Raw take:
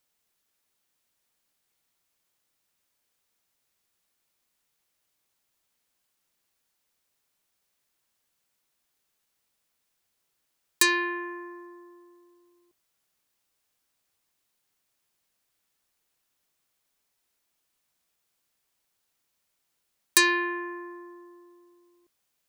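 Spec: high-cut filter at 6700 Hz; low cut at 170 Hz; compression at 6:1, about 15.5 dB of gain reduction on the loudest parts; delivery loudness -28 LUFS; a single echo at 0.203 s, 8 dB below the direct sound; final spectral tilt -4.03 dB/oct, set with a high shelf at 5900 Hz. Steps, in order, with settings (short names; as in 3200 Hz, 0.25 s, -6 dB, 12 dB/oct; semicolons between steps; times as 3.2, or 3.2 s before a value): HPF 170 Hz; LPF 6700 Hz; high shelf 5900 Hz +7 dB; compressor 6:1, threshold -33 dBFS; echo 0.203 s -8 dB; gain +11 dB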